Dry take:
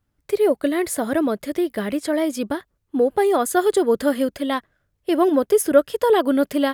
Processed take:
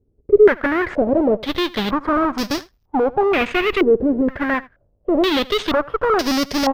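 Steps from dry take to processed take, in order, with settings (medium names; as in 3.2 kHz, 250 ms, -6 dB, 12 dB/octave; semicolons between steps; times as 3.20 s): square wave that keeps the level; bass shelf 83 Hz +7.5 dB; valve stage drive 18 dB, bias 0.5; on a send: delay 80 ms -21 dB; on the sum: careless resampling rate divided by 3×, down filtered, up zero stuff; step-sequenced low-pass 2.1 Hz 410–5200 Hz; trim +1 dB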